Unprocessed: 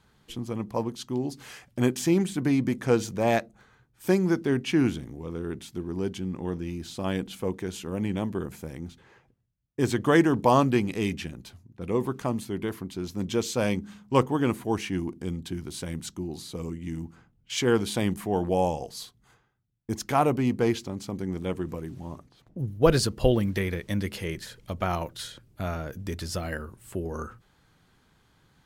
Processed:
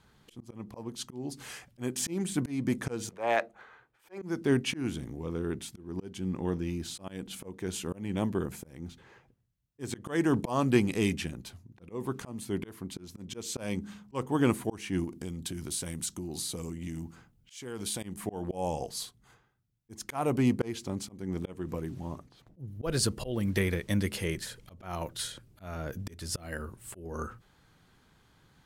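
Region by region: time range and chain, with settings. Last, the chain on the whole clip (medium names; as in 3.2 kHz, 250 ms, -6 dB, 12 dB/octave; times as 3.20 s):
3.09–4.22 s: three-band isolator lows -19 dB, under 400 Hz, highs -15 dB, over 3.1 kHz + transient shaper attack -11 dB, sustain +7 dB
15.04–18.03 s: treble shelf 3.8 kHz +7.5 dB + compression, threshold -33 dBFS
whole clip: dynamic bell 9.1 kHz, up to +6 dB, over -57 dBFS, Q 1.5; slow attack 300 ms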